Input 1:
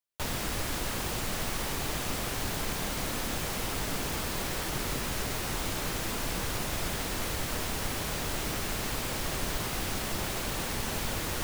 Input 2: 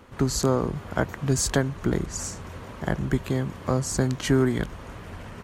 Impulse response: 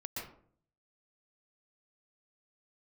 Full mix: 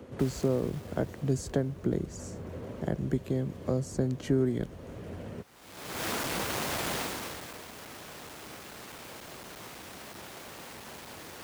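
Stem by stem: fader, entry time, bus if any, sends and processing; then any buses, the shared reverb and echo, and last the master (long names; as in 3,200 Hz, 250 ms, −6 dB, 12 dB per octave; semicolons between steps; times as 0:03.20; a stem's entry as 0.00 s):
0:05.27 −12.5 dB → 0:06.00 −1.5 dB → 0:06.96 −1.5 dB → 0:07.60 −14.5 dB, 0.00 s, no send, each half-wave held at its own peak; low-shelf EQ 170 Hz −11.5 dB; automatic ducking −22 dB, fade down 1.85 s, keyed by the second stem
−14.0 dB, 0.00 s, no send, low shelf with overshoot 730 Hz +8.5 dB, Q 1.5; multiband upward and downward compressor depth 40%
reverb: not used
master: high-pass filter 67 Hz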